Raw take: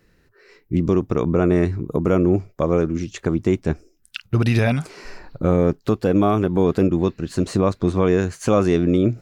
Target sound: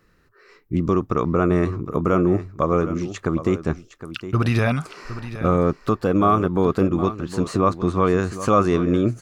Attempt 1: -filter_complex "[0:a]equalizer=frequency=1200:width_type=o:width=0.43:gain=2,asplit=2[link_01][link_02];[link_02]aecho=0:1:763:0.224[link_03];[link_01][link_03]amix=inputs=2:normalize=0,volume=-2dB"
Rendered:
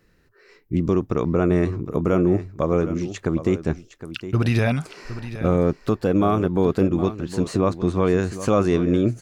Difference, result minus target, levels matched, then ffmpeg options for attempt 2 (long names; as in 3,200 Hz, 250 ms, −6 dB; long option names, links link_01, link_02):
1,000 Hz band −5.5 dB
-filter_complex "[0:a]equalizer=frequency=1200:width_type=o:width=0.43:gain=11,asplit=2[link_01][link_02];[link_02]aecho=0:1:763:0.224[link_03];[link_01][link_03]amix=inputs=2:normalize=0,volume=-2dB"